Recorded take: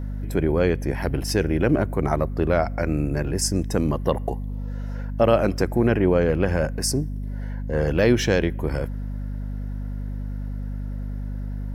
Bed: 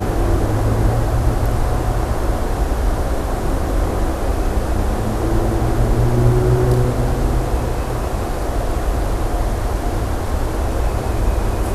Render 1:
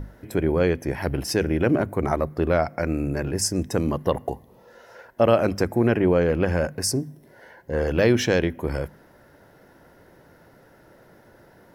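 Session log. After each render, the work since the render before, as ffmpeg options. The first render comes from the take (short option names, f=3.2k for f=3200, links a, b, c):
-af "bandreject=f=50:t=h:w=6,bandreject=f=100:t=h:w=6,bandreject=f=150:t=h:w=6,bandreject=f=200:t=h:w=6,bandreject=f=250:t=h:w=6"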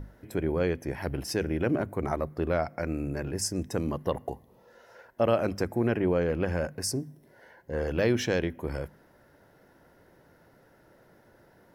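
-af "volume=-6.5dB"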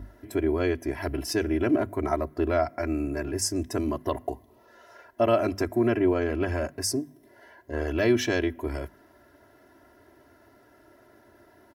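-af "highpass=53,aecho=1:1:3:0.98"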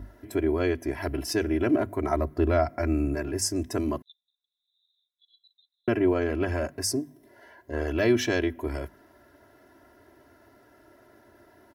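-filter_complex "[0:a]asettb=1/sr,asplit=3[a][b][c];[a]atrim=end=2.154[d];[b]atrim=start=2.15:end=3.15,asetpts=PTS-STARTPTS,afade=t=in:d=0.004:c=qsin,afade=t=out:st=0.996:d=0.004:c=qsin,lowshelf=f=180:g=7.5[e];[c]atrim=start=3.146[f];[d][e]acrossfade=d=0.004:c1=hsin:c2=qsin[g];[g][f]acrossfade=d=0.004:c1=qsin:c2=hsin,asettb=1/sr,asplit=3[h][i][j];[h]atrim=end=4.024[k];[i]atrim=start=4.02:end=5.88,asetpts=PTS-STARTPTS,afade=t=in:d=0.004:c=qsin,afade=t=out:st=1.856:d=0.004:c=qsin,asuperpass=centerf=3700:order=12:qfactor=6.4[l];[j]atrim=start=5.876[m];[k][l]acrossfade=d=0.004:c1=hsin:c2=qsin[n];[n][m]acrossfade=d=0.004:c1=qsin:c2=hsin"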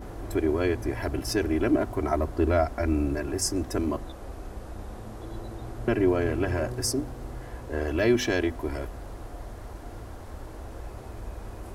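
-filter_complex "[1:a]volume=-20.5dB[a];[0:a][a]amix=inputs=2:normalize=0"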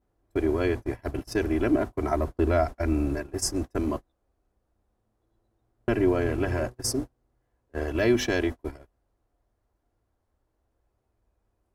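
-af "agate=range=-35dB:threshold=-28dB:ratio=16:detection=peak"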